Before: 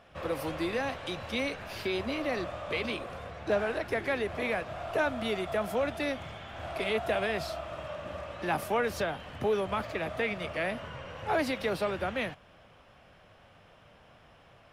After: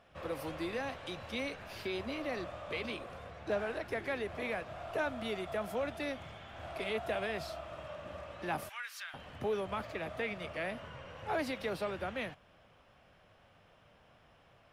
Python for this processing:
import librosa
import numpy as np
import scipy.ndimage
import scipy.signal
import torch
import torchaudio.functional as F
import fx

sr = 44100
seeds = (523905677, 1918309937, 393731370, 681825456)

y = fx.highpass(x, sr, hz=1400.0, slope=24, at=(8.69, 9.14))
y = y * librosa.db_to_amplitude(-6.0)